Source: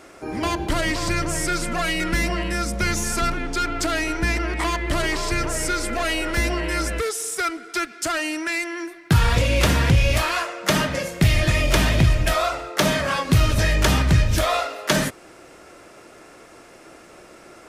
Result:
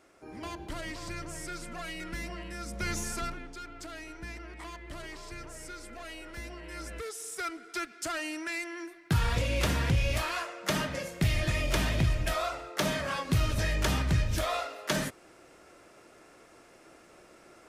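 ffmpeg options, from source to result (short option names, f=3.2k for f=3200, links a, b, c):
-af "volume=0.5dB,afade=t=in:st=2.58:d=0.38:silence=0.473151,afade=t=out:st=2.96:d=0.61:silence=0.298538,afade=t=in:st=6.61:d=1.01:silence=0.316228"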